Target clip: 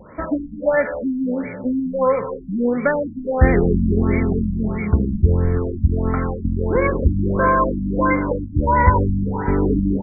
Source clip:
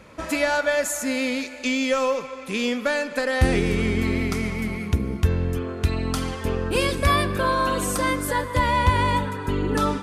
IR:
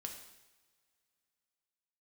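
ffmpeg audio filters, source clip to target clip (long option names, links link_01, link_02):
-filter_complex "[0:a]asplit=6[link_01][link_02][link_03][link_04][link_05][link_06];[link_02]adelay=204,afreqshift=-75,volume=-16dB[link_07];[link_03]adelay=408,afreqshift=-150,volume=-21.7dB[link_08];[link_04]adelay=612,afreqshift=-225,volume=-27.4dB[link_09];[link_05]adelay=816,afreqshift=-300,volume=-33dB[link_10];[link_06]adelay=1020,afreqshift=-375,volume=-38.7dB[link_11];[link_01][link_07][link_08][link_09][link_10][link_11]amix=inputs=6:normalize=0,asplit=2[link_12][link_13];[1:a]atrim=start_sample=2205[link_14];[link_13][link_14]afir=irnorm=-1:irlink=0,volume=-2.5dB[link_15];[link_12][link_15]amix=inputs=2:normalize=0,afftfilt=real='re*lt(b*sr/1024,290*pow(2400/290,0.5+0.5*sin(2*PI*1.5*pts/sr)))':imag='im*lt(b*sr/1024,290*pow(2400/290,0.5+0.5*sin(2*PI*1.5*pts/sr)))':win_size=1024:overlap=0.75,volume=2.5dB"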